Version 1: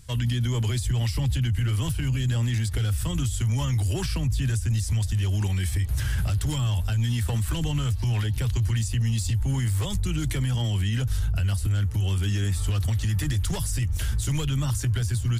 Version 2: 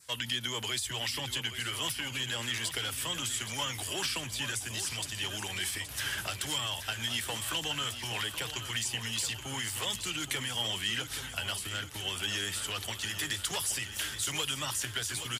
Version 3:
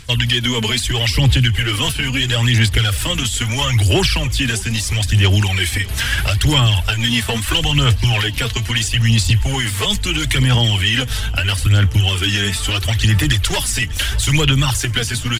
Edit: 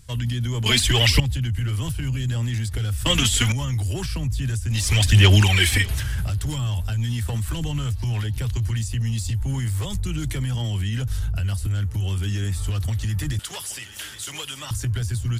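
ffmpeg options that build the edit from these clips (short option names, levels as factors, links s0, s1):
-filter_complex "[2:a]asplit=3[s0][s1][s2];[0:a]asplit=5[s3][s4][s5][s6][s7];[s3]atrim=end=0.662[s8];[s0]atrim=start=0.658:end=1.202[s9];[s4]atrim=start=1.198:end=3.062[s10];[s1]atrim=start=3.058:end=3.522[s11];[s5]atrim=start=3.518:end=4.92[s12];[s2]atrim=start=4.68:end=6.04[s13];[s6]atrim=start=5.8:end=13.392[s14];[1:a]atrim=start=13.388:end=14.712[s15];[s7]atrim=start=14.708[s16];[s8][s9]acrossfade=d=0.004:c1=hsin:c2=hsin[s17];[s17][s10]acrossfade=d=0.004:c1=hsin:c2=hsin[s18];[s18][s11]acrossfade=d=0.004:c1=hsin:c2=hsin[s19];[s19][s12]acrossfade=d=0.004:c1=hsin:c2=hsin[s20];[s20][s13]acrossfade=d=0.24:c1=tri:c2=tri[s21];[s21][s14]acrossfade=d=0.24:c1=tri:c2=tri[s22];[s22][s15]acrossfade=d=0.004:c1=hsin:c2=hsin[s23];[s23][s16]acrossfade=d=0.004:c1=hsin:c2=hsin"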